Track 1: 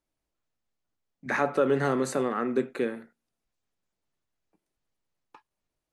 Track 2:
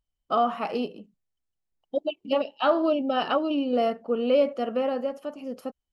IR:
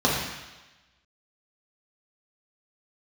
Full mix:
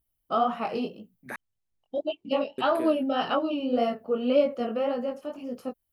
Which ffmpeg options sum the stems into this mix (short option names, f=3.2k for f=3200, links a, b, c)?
-filter_complex "[0:a]aexciter=amount=15.4:drive=3.8:freq=9.8k,volume=-8.5dB,asplit=3[a][b][c];[a]atrim=end=1.36,asetpts=PTS-STARTPTS,afade=t=out:st=1.356:d=0.004:c=hsin[d];[b]atrim=start=1.36:end=2.58,asetpts=PTS-STARTPTS,volume=0[e];[c]atrim=start=2.58,asetpts=PTS-STARTPTS,afade=t=in:d=0.004:c=hsin[f];[d][e][f]concat=n=3:v=0:a=1[g];[1:a]equalizer=f=100:w=1.3:g=9,flanger=delay=16.5:depth=6.8:speed=1.8,volume=1.5dB[h];[g][h]amix=inputs=2:normalize=0"